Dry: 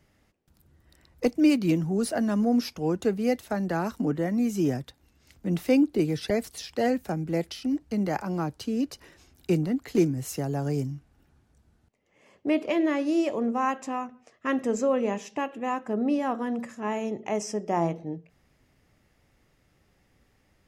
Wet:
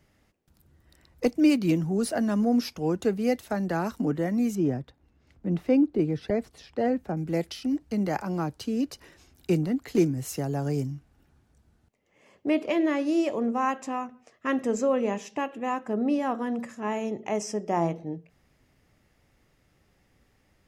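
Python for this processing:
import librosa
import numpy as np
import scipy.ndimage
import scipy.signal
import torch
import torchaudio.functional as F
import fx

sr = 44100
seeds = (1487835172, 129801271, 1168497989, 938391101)

y = fx.lowpass(x, sr, hz=1200.0, slope=6, at=(4.55, 7.17))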